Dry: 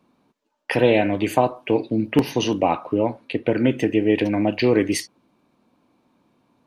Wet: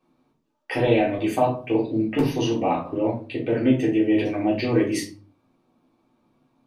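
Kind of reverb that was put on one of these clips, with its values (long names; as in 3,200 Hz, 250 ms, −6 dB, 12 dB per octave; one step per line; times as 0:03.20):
rectangular room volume 200 cubic metres, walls furnished, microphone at 3.6 metres
level −10.5 dB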